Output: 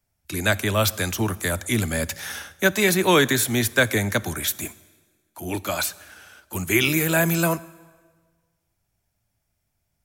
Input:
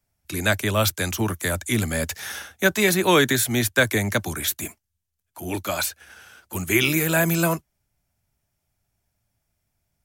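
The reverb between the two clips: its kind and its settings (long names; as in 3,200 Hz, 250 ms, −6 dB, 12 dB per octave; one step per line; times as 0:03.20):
dense smooth reverb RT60 1.5 s, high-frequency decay 0.85×, DRR 18.5 dB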